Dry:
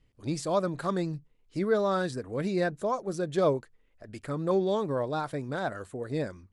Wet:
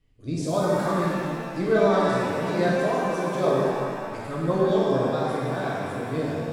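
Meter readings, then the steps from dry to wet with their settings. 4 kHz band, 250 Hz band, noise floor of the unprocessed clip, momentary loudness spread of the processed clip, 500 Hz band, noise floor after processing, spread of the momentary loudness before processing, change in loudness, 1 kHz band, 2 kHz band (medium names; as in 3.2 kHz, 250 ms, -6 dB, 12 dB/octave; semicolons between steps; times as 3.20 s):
+5.5 dB, +6.0 dB, -66 dBFS, 9 LU, +6.0 dB, -35 dBFS, 9 LU, +5.5 dB, +6.5 dB, +7.5 dB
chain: rotary cabinet horn 1 Hz, later 5 Hz, at 3.21 s; pitch-shifted reverb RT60 2.1 s, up +7 st, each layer -8 dB, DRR -6 dB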